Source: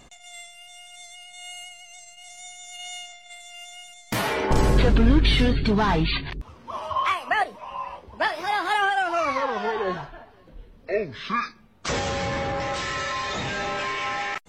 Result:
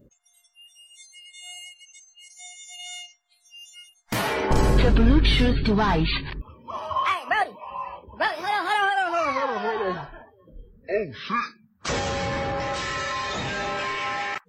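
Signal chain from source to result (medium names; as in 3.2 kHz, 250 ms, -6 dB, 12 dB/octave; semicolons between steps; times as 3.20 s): band noise 770–1800 Hz -57 dBFS; spectral noise reduction 30 dB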